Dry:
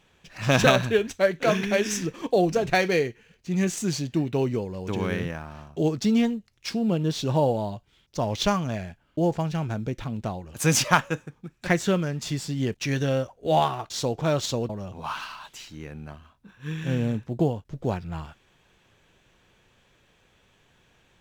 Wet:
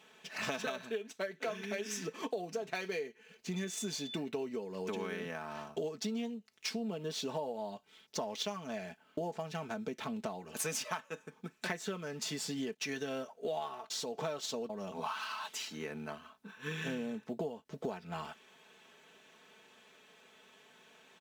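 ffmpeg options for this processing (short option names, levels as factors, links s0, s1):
-filter_complex "[0:a]asettb=1/sr,asplit=3[s0][s1][s2];[s0]atrim=end=3.564[s3];[s1]atrim=start=3.56:end=4.17,asetpts=PTS-STARTPTS,afade=t=in:d=0.004:c=qsin,afade=t=out:st=0.606:d=0.004:c=qsin,aeval=exprs='val(0)+0.00708*sin(2*PI*3500*n/s)':c=same[s4];[s2]atrim=start=4.166[s5];[s3][s4]acrossfade=d=0.004:c1=hsin:c2=qsin[s6];[s6][s5]acrossfade=d=0.004:c1=qsin:c2=hsin,asettb=1/sr,asplit=3[s7][s8][s9];[s7]atrim=end=13.774[s10];[s8]atrim=start=13.77:end=14.22,asetpts=PTS-STARTPTS,afade=t=in:d=0.004:c=qsin,afade=t=out:st=0.446:d=0.004:c=qsin,acompressor=threshold=0.0282:ratio=6:attack=3.2:release=140:knee=1:detection=peak[s11];[s9]atrim=start=14.216[s12];[s10][s11]acrossfade=d=0.004:c1=hsin:c2=qsin[s13];[s13][s12]acrossfade=d=0.004:c1=qsin:c2=hsin,highpass=280,aecho=1:1:4.6:0.65,acompressor=threshold=0.0158:ratio=10,volume=1.12"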